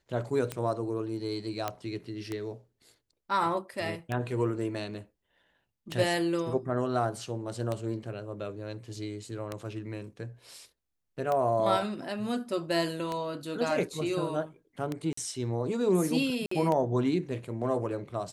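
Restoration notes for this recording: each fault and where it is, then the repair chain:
tick 33 1/3 rpm -18 dBFS
1.68 s: pop -16 dBFS
15.13–15.17 s: dropout 44 ms
16.46–16.51 s: dropout 54 ms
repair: de-click; interpolate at 15.13 s, 44 ms; interpolate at 16.46 s, 54 ms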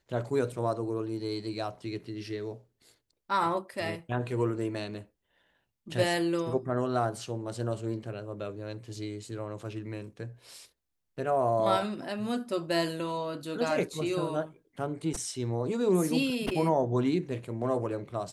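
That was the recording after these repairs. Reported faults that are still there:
nothing left

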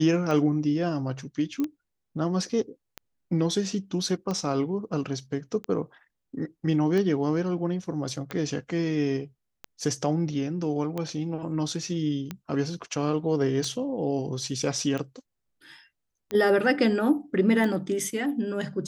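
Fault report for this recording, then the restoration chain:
tick 45 rpm -18 dBFS
1.60 s: pop -18 dBFS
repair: de-click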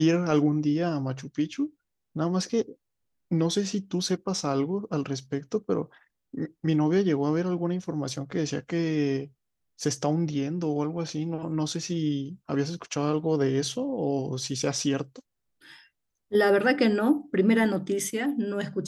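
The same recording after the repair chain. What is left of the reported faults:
nothing left

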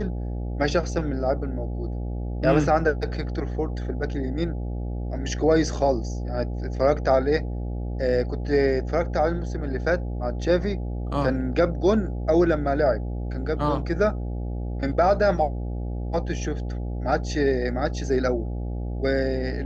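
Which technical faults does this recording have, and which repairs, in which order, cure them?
buzz 60 Hz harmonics 14 -29 dBFS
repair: de-hum 60 Hz, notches 14

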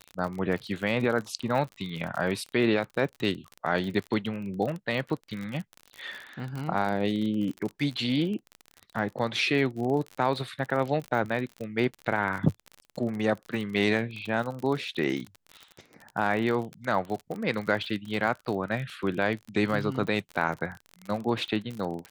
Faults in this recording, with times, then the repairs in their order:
crackle 44 per s -32 dBFS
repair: de-click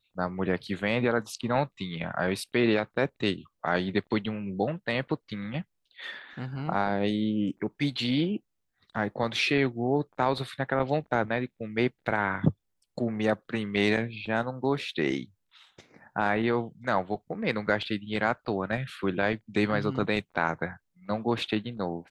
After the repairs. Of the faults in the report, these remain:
nothing left

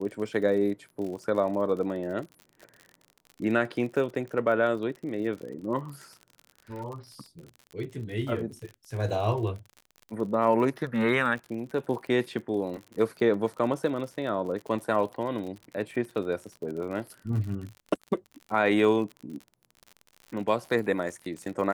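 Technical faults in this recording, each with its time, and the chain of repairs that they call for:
crackle 52 per s -36 dBFS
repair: de-click

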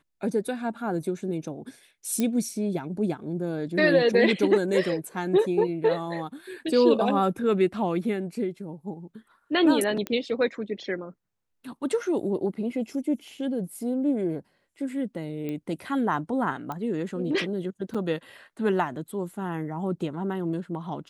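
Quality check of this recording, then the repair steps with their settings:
2.20 s: pop -13 dBFS
10.07 s: pop -16 dBFS
15.49 s: pop -21 dBFS
16.72 s: pop -20 dBFS
17.94–17.95 s: dropout 6.1 ms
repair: de-click; interpolate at 17.94 s, 6.1 ms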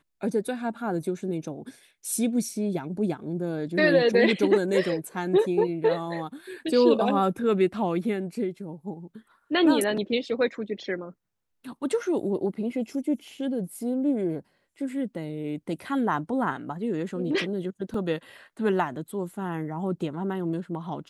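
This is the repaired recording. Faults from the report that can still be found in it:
10.07 s: pop
16.72 s: pop

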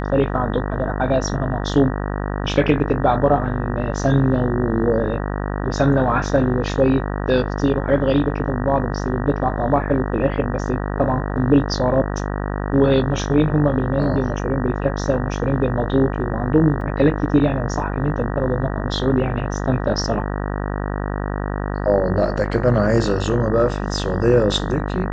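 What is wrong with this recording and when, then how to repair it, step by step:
buzz 50 Hz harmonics 38 -24 dBFS
16.81 s: dropout 3.5 ms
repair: de-hum 50 Hz, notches 38; interpolate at 16.81 s, 3.5 ms

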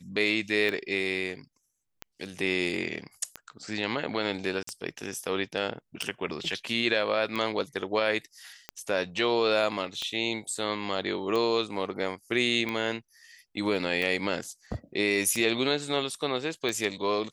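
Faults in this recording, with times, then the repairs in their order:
tick 45 rpm
4.63–4.67 s: dropout 44 ms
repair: de-click; interpolate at 4.63 s, 44 ms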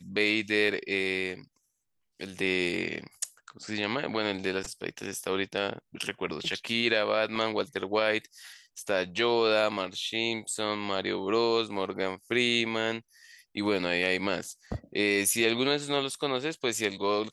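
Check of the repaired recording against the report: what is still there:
nothing left

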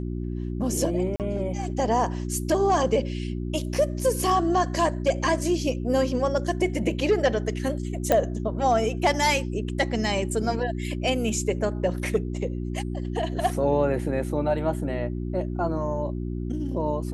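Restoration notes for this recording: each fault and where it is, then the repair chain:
hum 60 Hz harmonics 6 -30 dBFS
1.16–1.20 s: dropout 38 ms
8.12 s: pop -8 dBFS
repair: de-click; de-hum 60 Hz, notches 6; interpolate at 1.16 s, 38 ms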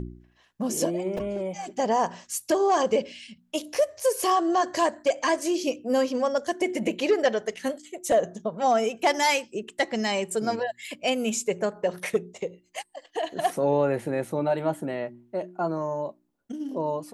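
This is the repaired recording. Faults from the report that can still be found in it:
8.12 s: pop

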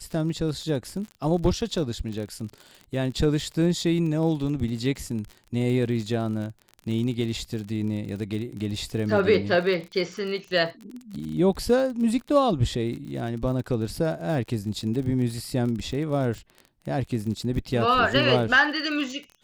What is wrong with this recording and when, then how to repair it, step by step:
crackle 44 per s -33 dBFS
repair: de-click

